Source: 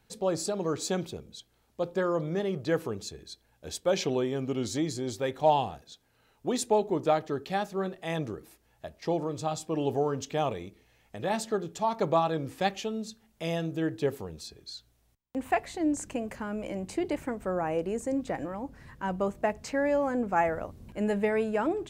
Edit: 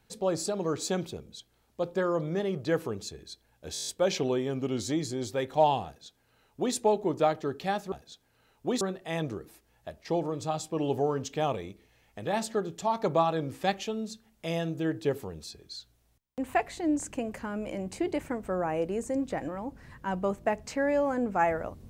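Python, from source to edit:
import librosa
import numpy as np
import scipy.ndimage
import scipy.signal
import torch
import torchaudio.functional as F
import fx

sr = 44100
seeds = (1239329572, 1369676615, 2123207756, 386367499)

y = fx.edit(x, sr, fx.stutter(start_s=3.73, slice_s=0.02, count=8),
    fx.duplicate(start_s=5.72, length_s=0.89, to_s=7.78), tone=tone)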